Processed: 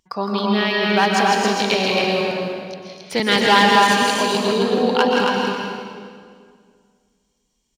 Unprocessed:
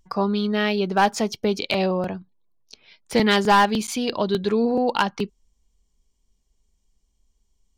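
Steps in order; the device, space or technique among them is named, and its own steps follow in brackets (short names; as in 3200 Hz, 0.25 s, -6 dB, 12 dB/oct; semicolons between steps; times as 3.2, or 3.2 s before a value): stadium PA (HPF 190 Hz 6 dB/oct; bell 3200 Hz +5 dB 2.5 oct; loudspeakers at several distances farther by 56 m -6 dB, 78 m -11 dB, 93 m -3 dB; reverb RT60 2.1 s, pre-delay 0.115 s, DRR 0.5 dB); gain -1.5 dB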